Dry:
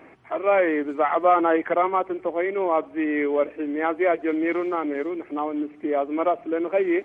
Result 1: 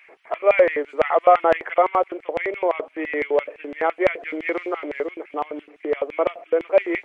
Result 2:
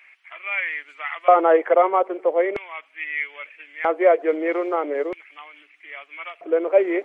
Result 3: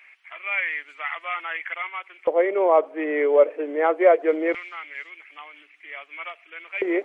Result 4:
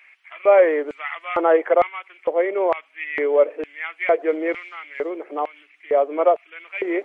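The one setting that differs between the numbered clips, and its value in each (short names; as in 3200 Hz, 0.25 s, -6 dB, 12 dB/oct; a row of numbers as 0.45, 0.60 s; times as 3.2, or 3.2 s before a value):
LFO high-pass, rate: 5.9, 0.39, 0.22, 1.1 Hz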